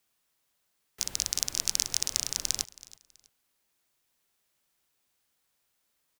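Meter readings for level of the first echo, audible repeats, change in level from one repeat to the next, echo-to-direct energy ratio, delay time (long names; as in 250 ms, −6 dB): −20.0 dB, 2, −11.0 dB, −19.5 dB, 325 ms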